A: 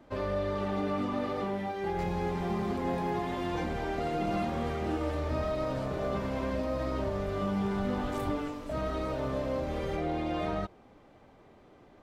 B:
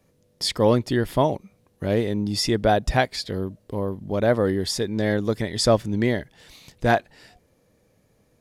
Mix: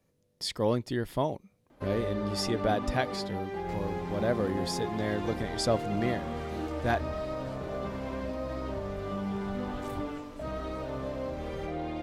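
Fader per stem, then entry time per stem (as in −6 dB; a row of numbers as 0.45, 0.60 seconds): −3.0, −9.0 decibels; 1.70, 0.00 seconds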